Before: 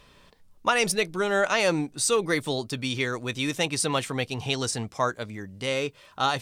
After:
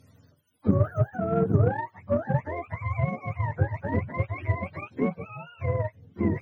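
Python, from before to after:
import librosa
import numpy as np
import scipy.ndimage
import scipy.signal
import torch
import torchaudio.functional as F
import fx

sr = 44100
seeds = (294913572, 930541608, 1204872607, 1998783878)

y = fx.octave_mirror(x, sr, pivot_hz=520.0)
y = fx.cheby_harmonics(y, sr, harmonics=(7,), levels_db=(-30,), full_scale_db=-9.0)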